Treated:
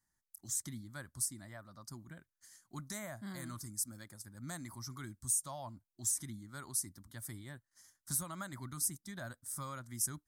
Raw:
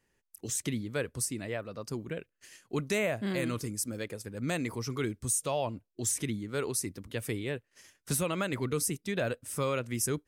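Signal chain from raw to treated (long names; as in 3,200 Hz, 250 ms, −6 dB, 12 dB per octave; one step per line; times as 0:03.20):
high-shelf EQ 2,900 Hz +8 dB
phaser with its sweep stopped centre 1,100 Hz, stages 4
level −9 dB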